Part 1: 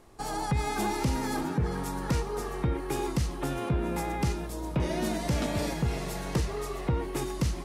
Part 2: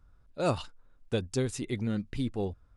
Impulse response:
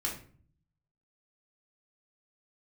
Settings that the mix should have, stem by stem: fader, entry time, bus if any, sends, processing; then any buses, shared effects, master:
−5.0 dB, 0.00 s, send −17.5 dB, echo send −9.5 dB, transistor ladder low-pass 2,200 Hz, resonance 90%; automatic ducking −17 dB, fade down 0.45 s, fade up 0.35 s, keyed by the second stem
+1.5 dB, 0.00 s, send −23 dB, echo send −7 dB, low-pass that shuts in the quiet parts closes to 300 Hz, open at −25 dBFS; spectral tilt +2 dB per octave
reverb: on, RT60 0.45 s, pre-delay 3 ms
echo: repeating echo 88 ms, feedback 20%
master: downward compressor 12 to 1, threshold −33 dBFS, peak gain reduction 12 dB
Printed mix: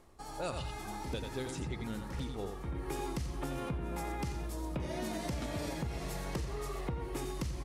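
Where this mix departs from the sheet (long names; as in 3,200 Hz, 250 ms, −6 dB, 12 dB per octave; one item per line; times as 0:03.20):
stem 1: missing transistor ladder low-pass 2,200 Hz, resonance 90%
stem 2 +1.5 dB → −5.0 dB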